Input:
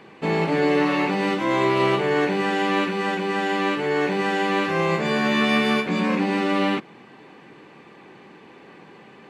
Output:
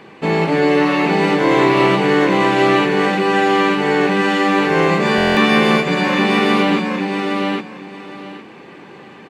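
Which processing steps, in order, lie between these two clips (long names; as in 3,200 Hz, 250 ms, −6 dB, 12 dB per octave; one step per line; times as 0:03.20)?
on a send: repeating echo 811 ms, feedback 20%, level −3.5 dB
on the sum: buffer that repeats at 0:05.16, samples 1,024, times 8
level +5.5 dB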